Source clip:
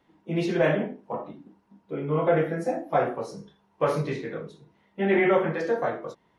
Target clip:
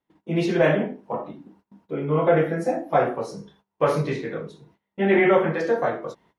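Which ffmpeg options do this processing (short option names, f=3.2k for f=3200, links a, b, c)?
-af "agate=range=-21dB:threshold=-59dB:ratio=16:detection=peak,volume=3.5dB"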